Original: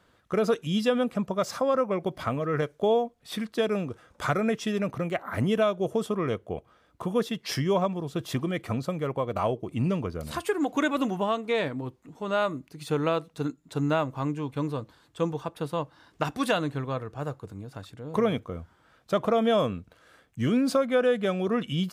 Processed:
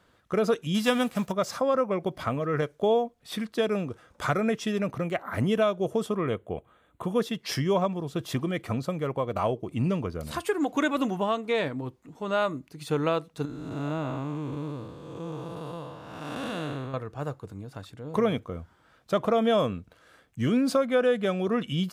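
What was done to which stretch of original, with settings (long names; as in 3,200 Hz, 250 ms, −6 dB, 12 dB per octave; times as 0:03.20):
0:00.74–0:01.31: spectral envelope flattened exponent 0.6
0:06.20–0:07.04: Butterworth band-reject 5,200 Hz, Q 1.9
0:13.45–0:16.94: spectrum smeared in time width 338 ms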